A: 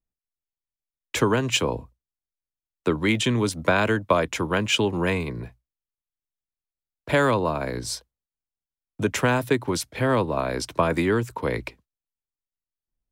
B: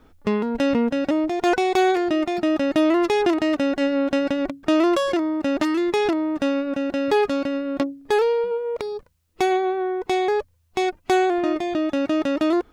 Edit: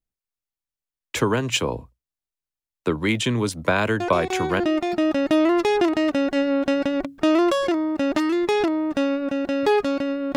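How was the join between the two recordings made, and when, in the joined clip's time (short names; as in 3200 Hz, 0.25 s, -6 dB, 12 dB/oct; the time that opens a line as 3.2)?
A
4 add B from 1.45 s 0.60 s -8 dB
4.6 switch to B from 2.05 s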